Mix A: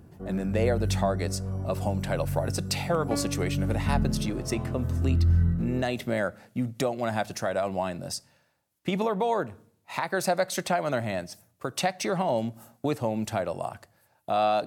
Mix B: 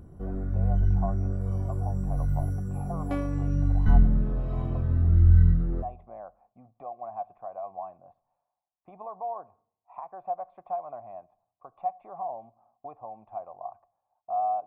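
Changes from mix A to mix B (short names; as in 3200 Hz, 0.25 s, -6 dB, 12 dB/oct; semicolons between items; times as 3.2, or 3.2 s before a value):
speech: add vocal tract filter a; master: remove HPF 91 Hz 12 dB/oct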